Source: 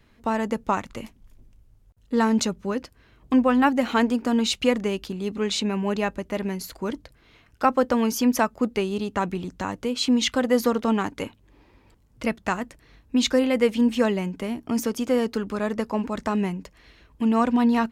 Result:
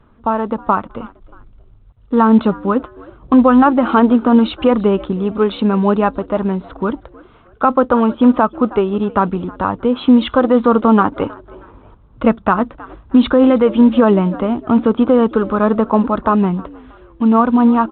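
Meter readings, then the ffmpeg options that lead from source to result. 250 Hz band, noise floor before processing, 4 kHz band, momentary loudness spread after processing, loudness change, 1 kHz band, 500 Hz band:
+10.5 dB, -58 dBFS, -1.5 dB, 9 LU, +9.5 dB, +10.5 dB, +9.5 dB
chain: -filter_complex "[0:a]highshelf=f=1600:t=q:w=3:g=-7,dynaudnorm=f=590:g=7:m=2.82,aphaser=in_gain=1:out_gain=1:delay=4.7:decay=0.22:speed=0.6:type=sinusoidal,asplit=3[s0][s1][s2];[s1]adelay=316,afreqshift=78,volume=0.0708[s3];[s2]adelay=632,afreqshift=156,volume=0.0248[s4];[s0][s3][s4]amix=inputs=3:normalize=0,alimiter=level_in=2.24:limit=0.891:release=50:level=0:latency=1,volume=0.891" -ar 8000 -c:a pcm_mulaw

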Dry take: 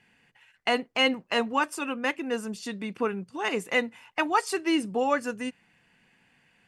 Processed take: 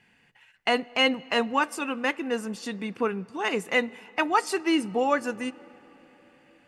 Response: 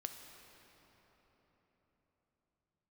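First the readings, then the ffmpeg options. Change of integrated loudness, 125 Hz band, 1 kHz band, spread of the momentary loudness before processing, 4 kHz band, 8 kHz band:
+1.0 dB, +1.5 dB, +1.5 dB, 9 LU, +1.0 dB, 0.0 dB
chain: -filter_complex "[0:a]asplit=2[s0][s1];[1:a]atrim=start_sample=2205,lowpass=7100[s2];[s1][s2]afir=irnorm=-1:irlink=0,volume=0.251[s3];[s0][s3]amix=inputs=2:normalize=0"

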